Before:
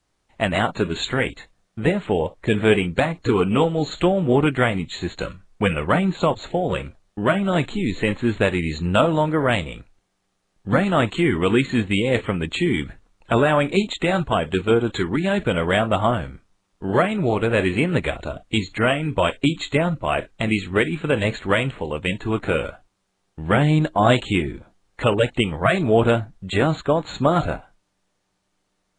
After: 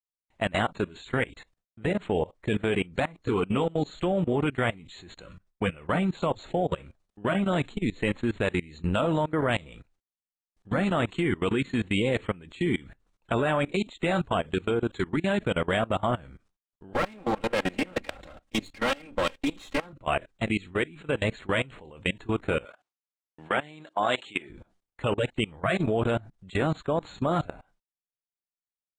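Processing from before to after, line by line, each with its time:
0:16.93–0:19.93: lower of the sound and its delayed copy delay 3.7 ms
0:22.65–0:24.50: meter weighting curve A
whole clip: output level in coarse steps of 22 dB; noise gate with hold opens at −57 dBFS; level −2.5 dB

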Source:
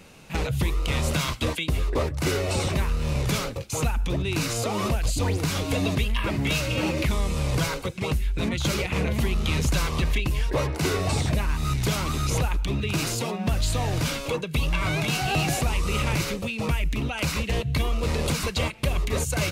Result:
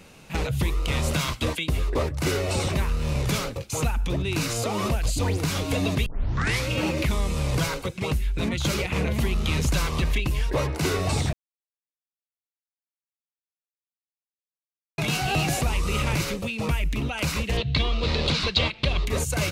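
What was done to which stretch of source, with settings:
0:06.06: tape start 0.62 s
0:11.33–0:14.98: silence
0:17.57–0:19.07: low-pass with resonance 4,000 Hz, resonance Q 3.2

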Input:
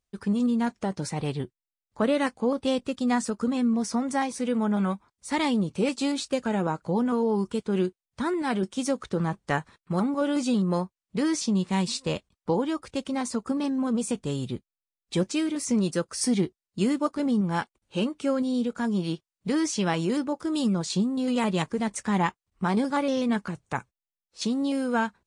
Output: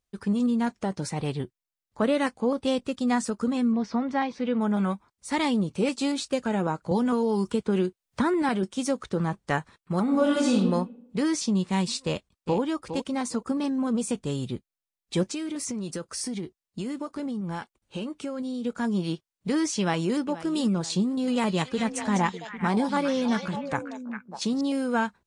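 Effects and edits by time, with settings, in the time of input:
0:03.72–0:04.61: low-pass filter 4,200 Hz 24 dB per octave
0:06.91–0:08.49: multiband upward and downward compressor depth 100%
0:10.03–0:10.56: thrown reverb, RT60 0.81 s, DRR −2 dB
0:12.05–0:12.60: delay throw 410 ms, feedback 15%, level −9.5 dB
0:15.28–0:18.65: downward compressor 12 to 1, threshold −28 dBFS
0:19.79–0:20.19: delay throw 480 ms, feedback 45%, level −15.5 dB
0:21.02–0:24.61: echo through a band-pass that steps 200 ms, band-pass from 4,700 Hz, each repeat −1.4 octaves, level −1 dB

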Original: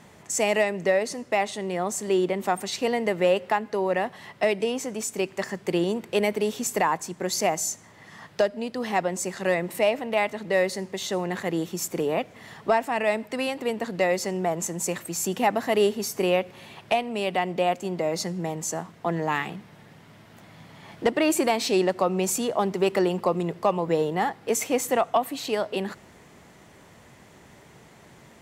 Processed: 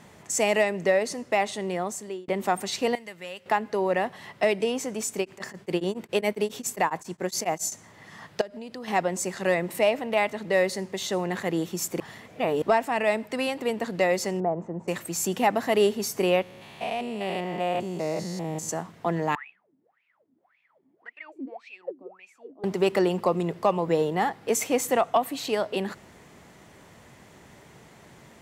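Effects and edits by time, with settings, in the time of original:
0:01.70–0:02.28: fade out
0:02.95–0:03.46: guitar amp tone stack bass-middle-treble 5-5-5
0:05.19–0:07.72: tremolo along a rectified sine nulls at 7.3 Hz
0:08.41–0:08.88: downward compressor 5 to 1, threshold −35 dBFS
0:12.00–0:12.62: reverse
0:14.40–0:14.88: Chebyshev low-pass filter 790 Hz
0:16.42–0:18.69: spectrum averaged block by block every 200 ms
0:19.35–0:22.64: LFO wah 1.8 Hz 260–2,600 Hz, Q 22

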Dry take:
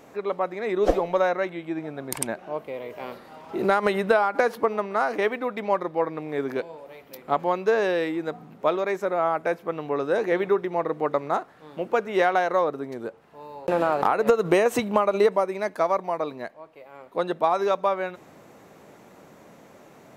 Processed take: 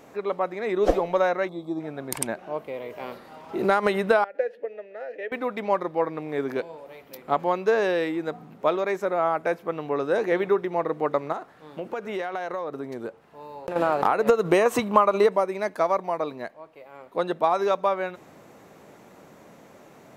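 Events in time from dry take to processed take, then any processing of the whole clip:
0:01.48–0:01.81: gain on a spectral selection 1,300–3,300 Hz −21 dB
0:04.24–0:05.32: formant filter e
0:11.32–0:13.76: downward compressor 5 to 1, threshold −27 dBFS
0:14.61–0:15.24: parametric band 1,100 Hz +9 dB 0.34 octaves

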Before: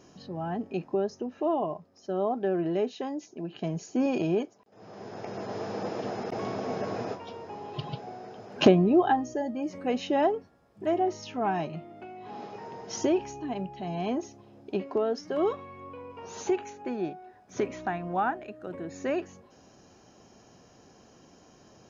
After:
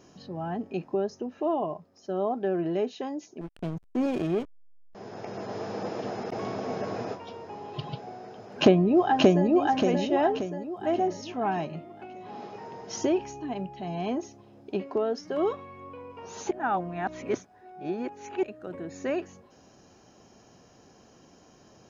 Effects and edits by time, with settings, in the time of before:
0:03.41–0:04.95: slack as between gear wheels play −29.5 dBFS
0:08.38–0:09.48: delay throw 580 ms, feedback 45%, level −1 dB
0:16.51–0:18.43: reverse

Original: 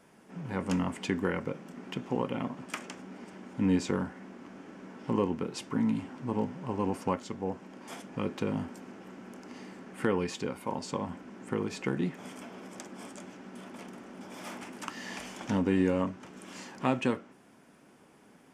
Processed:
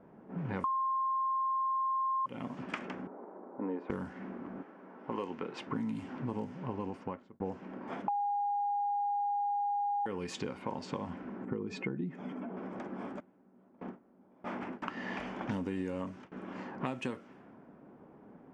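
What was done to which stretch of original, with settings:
0:00.64–0:02.26: beep over 1,060 Hz −14 dBFS
0:03.07–0:03.90: flat-topped band-pass 670 Hz, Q 0.82
0:04.62–0:05.66: high-pass filter 1,200 Hz → 450 Hz 6 dB per octave
0:06.42–0:07.40: fade out
0:08.08–0:10.06: beep over 815 Hz −17 dBFS
0:11.45–0:12.57: expanding power law on the bin magnitudes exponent 1.5
0:13.20–0:16.32: noise gate with hold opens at −34 dBFS, closes at −40 dBFS
whole clip: low-pass that shuts in the quiet parts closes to 850 Hz, open at −26.5 dBFS; downward compressor 6 to 1, threshold −38 dBFS; level +4.5 dB

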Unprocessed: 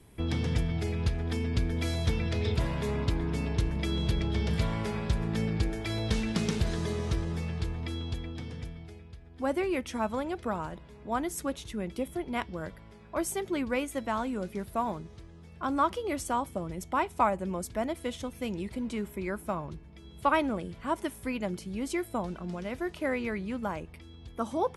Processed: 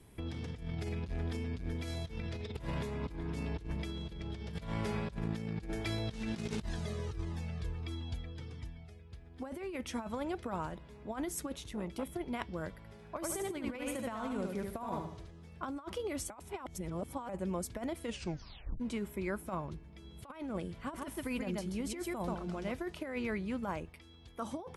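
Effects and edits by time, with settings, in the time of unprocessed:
0:01.05–0:01.83: saturating transformer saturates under 150 Hz
0:06.62–0:09.12: flanger whose copies keep moving one way falling 1.5 Hz
0:11.57–0:12.05: saturating transformer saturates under 560 Hz
0:12.77–0:15.31: repeating echo 74 ms, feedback 41%, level −5 dB
0:16.30–0:17.29: reverse
0:18.05: tape stop 0.75 s
0:20.73–0:22.72: single-tap delay 133 ms −5.5 dB
0:23.89–0:24.45: low-shelf EQ 460 Hz −7.5 dB
whole clip: compressor whose output falls as the input rises −32 dBFS, ratio −0.5; level −5 dB

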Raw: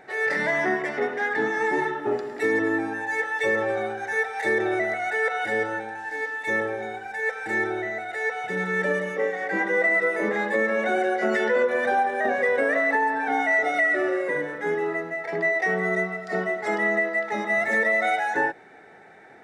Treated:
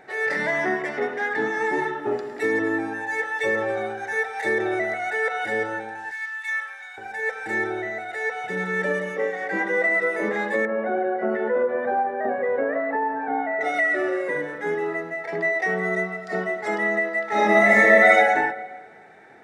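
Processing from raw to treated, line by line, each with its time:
0:06.11–0:06.98: high-pass filter 1,200 Hz 24 dB per octave
0:10.65–0:13.61: low-pass filter 1,200 Hz
0:17.27–0:18.14: thrown reverb, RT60 1.4 s, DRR −8 dB

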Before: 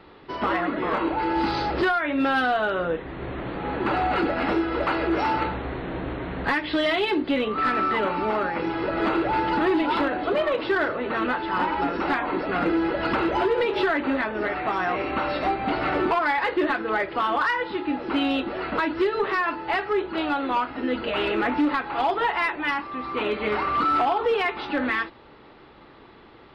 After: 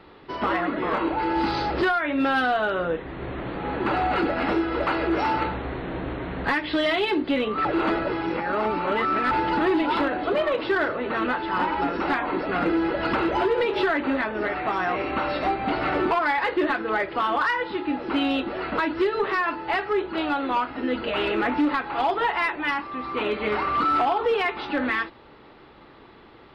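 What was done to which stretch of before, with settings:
0:07.65–0:09.31: reverse

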